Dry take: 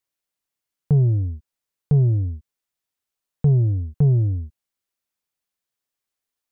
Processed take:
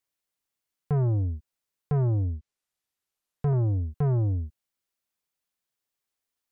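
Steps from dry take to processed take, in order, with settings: 2.24–3.53 s: low-pass that closes with the level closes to 680 Hz, closed at -17.5 dBFS; saturation -20.5 dBFS, distortion -11 dB; trim -1 dB

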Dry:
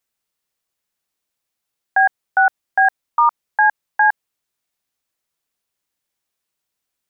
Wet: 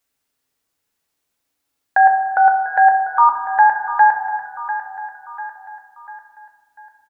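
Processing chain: feedback delay 695 ms, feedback 47%, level -14.5 dB; reverberation RT60 1.2 s, pre-delay 4 ms, DRR 2.5 dB; dynamic bell 1.5 kHz, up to -6 dB, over -26 dBFS, Q 1.1; trim +3.5 dB

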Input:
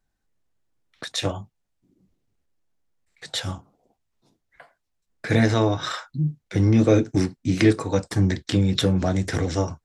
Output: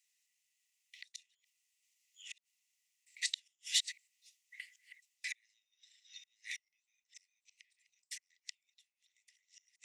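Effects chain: chunks repeated in reverse 595 ms, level -9 dB; reverse; compression 16:1, threshold -26 dBFS, peak gain reduction 15.5 dB; reverse; inverted gate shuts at -23 dBFS, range -39 dB; rippled Chebyshev high-pass 1.9 kHz, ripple 6 dB; trim +11 dB

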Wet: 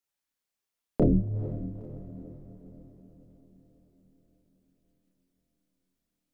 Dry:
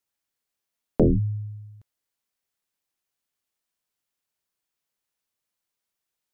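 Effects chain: chorus voices 4, 0.74 Hz, delay 30 ms, depth 3.8 ms; echo that smears into a reverb 468 ms, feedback 53%, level -13 dB; Schroeder reverb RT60 3.7 s, combs from 31 ms, DRR 17.5 dB

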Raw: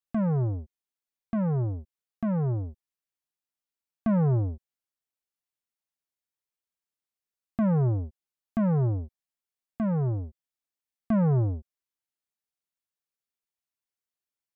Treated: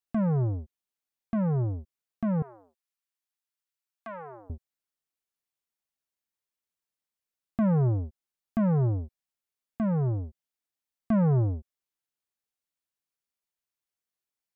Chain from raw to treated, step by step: 2.42–4.50 s: high-pass 930 Hz 12 dB/octave

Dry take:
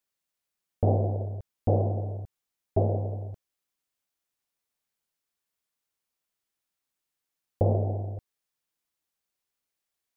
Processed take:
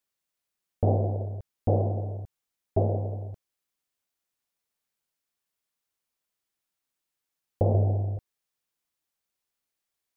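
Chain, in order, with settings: 7.74–8.17 s: peaking EQ 68 Hz +6.5 dB 2 oct

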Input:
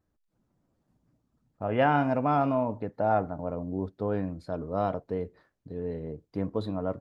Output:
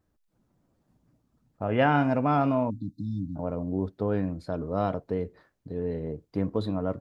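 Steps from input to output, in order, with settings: spectral selection erased 2.70–3.36 s, 320–3500 Hz; dynamic bell 770 Hz, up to -4 dB, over -36 dBFS, Q 0.88; trim +3.5 dB

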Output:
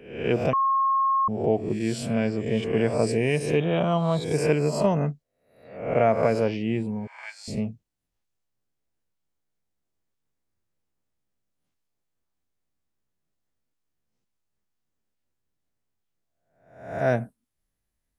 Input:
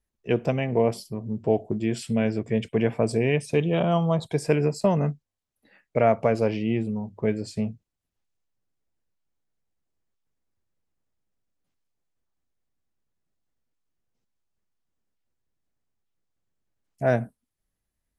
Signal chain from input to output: reverse spectral sustain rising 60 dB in 0.64 s; 0.53–1.28 s: bleep 1.08 kHz -17.5 dBFS; 7.07–7.48 s: elliptic high-pass 830 Hz, stop band 50 dB; trim -1.5 dB

